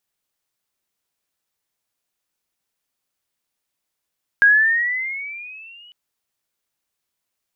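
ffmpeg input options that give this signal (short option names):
-f lavfi -i "aevalsrc='pow(10,(-8-35*t/1.5)/20)*sin(2*PI*1620*1.5/(10.5*log(2)/12)*(exp(10.5*log(2)/12*t/1.5)-1))':d=1.5:s=44100"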